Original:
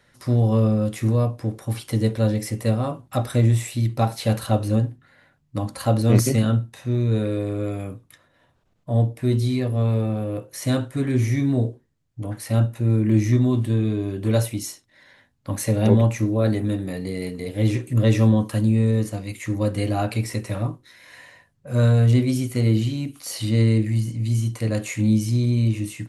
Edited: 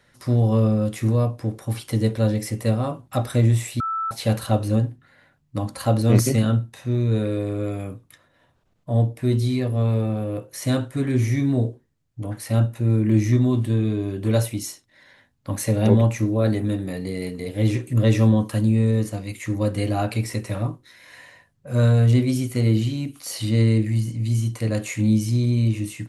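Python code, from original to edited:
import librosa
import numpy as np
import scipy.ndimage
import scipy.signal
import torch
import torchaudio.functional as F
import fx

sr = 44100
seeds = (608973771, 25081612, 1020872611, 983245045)

y = fx.edit(x, sr, fx.bleep(start_s=3.8, length_s=0.31, hz=1320.0, db=-22.5), tone=tone)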